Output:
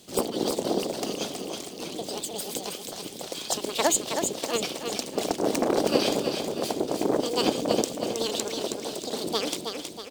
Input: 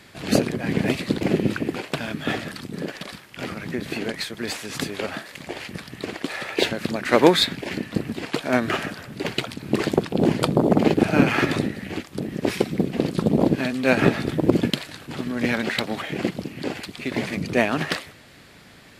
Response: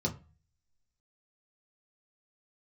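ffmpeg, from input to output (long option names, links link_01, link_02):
-af "equalizer=frequency=680:width_type=o:width=1.9:gain=-12.5,asetrate=82908,aresample=44100,aecho=1:1:320|640|960|1280|1600|1920:0.501|0.246|0.12|0.059|0.0289|0.0142,volume=-1.5dB"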